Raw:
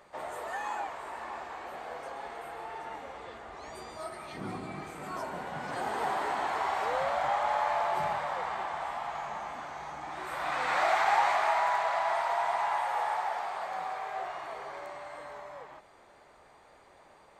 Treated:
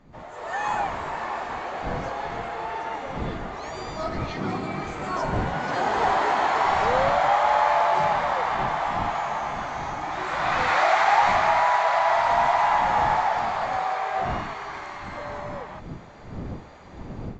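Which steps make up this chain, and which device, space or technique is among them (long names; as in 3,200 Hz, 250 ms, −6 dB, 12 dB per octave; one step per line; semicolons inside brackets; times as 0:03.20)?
0:14.41–0:15.16: parametric band 560 Hz −13.5 dB 0.62 octaves
smartphone video outdoors (wind on the microphone 230 Hz −48 dBFS; automatic gain control gain up to 15 dB; level −5 dB; AAC 64 kbit/s 16,000 Hz)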